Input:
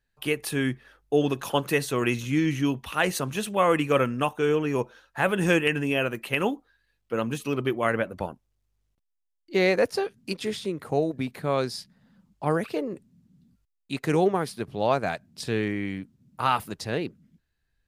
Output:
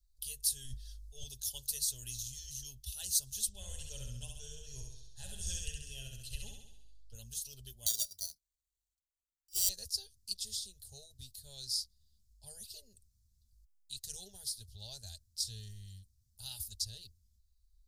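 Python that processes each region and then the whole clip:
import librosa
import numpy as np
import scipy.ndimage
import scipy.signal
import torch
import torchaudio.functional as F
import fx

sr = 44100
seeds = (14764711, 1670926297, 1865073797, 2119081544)

y = fx.chain(x, sr, fx.high_shelf(hz=11000.0, db=-8.5),
    fx.transient(attack_db=-7, sustain_db=11), at=(0.64, 1.24))
y = fx.chain(y, sr, fx.lowpass(hz=7300.0, slope=12),
    fx.low_shelf(hz=110.0, db=10.5),
    fx.echo_feedback(ms=67, feedback_pct=58, wet_db=-4.0), at=(3.48, 7.15))
y = fx.chain(y, sr, fx.highpass(hz=290.0, slope=12),
    fx.peak_eq(hz=630.0, db=4.0, octaves=0.44),
    fx.sample_hold(seeds[0], rate_hz=5200.0, jitter_pct=0), at=(7.86, 9.69))
y = scipy.signal.sosfilt(scipy.signal.cheby2(4, 40, [150.0, 2400.0], 'bandstop', fs=sr, output='sos'), y)
y = fx.bass_treble(y, sr, bass_db=4, treble_db=0)
y = y + 0.42 * np.pad(y, (int(4.9 * sr / 1000.0), 0))[:len(y)]
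y = y * 10.0 ** (3.0 / 20.0)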